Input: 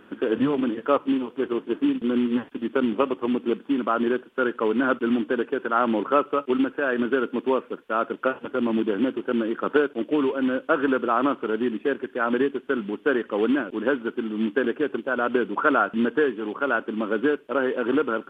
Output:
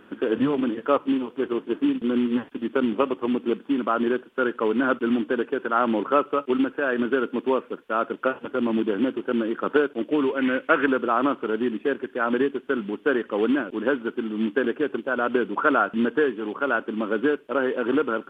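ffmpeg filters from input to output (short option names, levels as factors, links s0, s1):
-filter_complex "[0:a]asettb=1/sr,asplit=3[s0][s1][s2];[s0]atrim=end=10.364[s3];[s1]atrim=start=10.36:end=10.86,asetpts=PTS-STARTPTS,afade=t=in:d=0.004:c=qsin,afade=t=out:st=0.496:d=0.004:c=qsin,equalizer=f=2100:w=1.8:g=12[s4];[s2]atrim=start=10.856[s5];[s3][s4]acrossfade=d=0.004:c1=hsin:c2=qsin[s6];[s6][s5]acrossfade=d=0.004:c1=qsin:c2=hsin"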